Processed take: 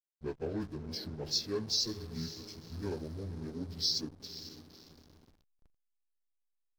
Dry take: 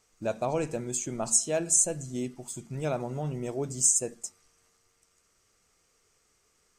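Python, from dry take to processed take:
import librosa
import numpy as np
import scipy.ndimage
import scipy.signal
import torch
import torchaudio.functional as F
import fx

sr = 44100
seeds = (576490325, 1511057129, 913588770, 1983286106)

y = fx.pitch_bins(x, sr, semitones=-7.5)
y = fx.echo_diffused(y, sr, ms=519, feedback_pct=50, wet_db=-11.5)
y = fx.backlash(y, sr, play_db=-37.0)
y = F.gain(torch.from_numpy(y), -6.0).numpy()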